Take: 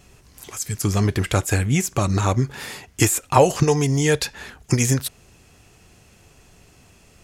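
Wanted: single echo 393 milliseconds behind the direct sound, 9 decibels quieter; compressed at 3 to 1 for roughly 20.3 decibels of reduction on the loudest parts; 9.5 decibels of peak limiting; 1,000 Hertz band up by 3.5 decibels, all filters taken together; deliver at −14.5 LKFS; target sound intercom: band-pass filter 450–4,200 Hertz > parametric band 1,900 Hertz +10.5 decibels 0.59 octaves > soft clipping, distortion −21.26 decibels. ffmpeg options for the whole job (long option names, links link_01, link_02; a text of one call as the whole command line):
ffmpeg -i in.wav -af "equalizer=frequency=1000:width_type=o:gain=3.5,acompressor=threshold=-36dB:ratio=3,alimiter=level_in=2.5dB:limit=-24dB:level=0:latency=1,volume=-2.5dB,highpass=450,lowpass=4200,equalizer=frequency=1900:width_type=o:width=0.59:gain=10.5,aecho=1:1:393:0.355,asoftclip=threshold=-26.5dB,volume=25dB" out.wav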